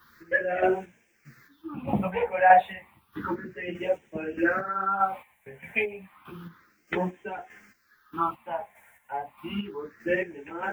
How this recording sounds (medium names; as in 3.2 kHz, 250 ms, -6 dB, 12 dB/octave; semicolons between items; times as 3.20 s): a quantiser's noise floor 12-bit, dither triangular; phasing stages 6, 0.31 Hz, lowest notch 320–1200 Hz; chopped level 1.6 Hz, depth 60%, duty 35%; a shimmering, thickened sound